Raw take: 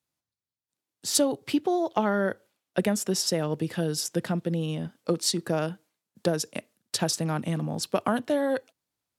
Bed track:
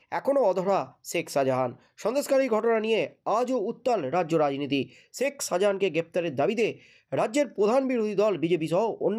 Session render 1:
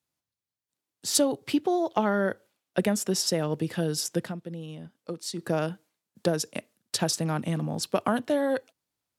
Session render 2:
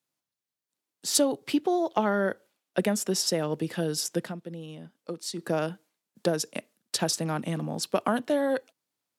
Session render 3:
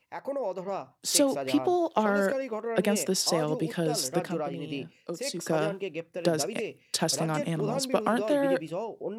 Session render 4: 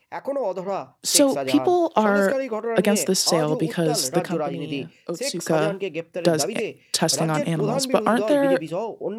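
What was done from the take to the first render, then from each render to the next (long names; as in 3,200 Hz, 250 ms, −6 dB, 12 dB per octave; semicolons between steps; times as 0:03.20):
0:04.17–0:05.49: duck −9.5 dB, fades 0.18 s
high-pass filter 160 Hz 12 dB per octave
mix in bed track −9 dB
level +6.5 dB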